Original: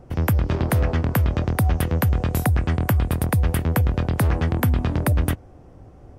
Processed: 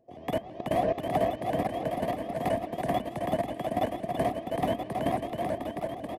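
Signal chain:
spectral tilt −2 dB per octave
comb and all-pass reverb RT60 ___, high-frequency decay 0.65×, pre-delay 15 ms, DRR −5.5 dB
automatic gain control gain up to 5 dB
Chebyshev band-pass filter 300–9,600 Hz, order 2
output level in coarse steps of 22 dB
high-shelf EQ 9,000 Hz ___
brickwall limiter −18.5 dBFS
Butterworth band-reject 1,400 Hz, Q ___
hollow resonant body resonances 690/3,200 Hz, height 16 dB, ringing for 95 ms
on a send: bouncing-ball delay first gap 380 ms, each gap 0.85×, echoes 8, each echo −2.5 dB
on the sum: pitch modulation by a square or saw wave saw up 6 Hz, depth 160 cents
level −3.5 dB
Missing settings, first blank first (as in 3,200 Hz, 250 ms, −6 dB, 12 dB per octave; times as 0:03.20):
0.43 s, −3 dB, 3.1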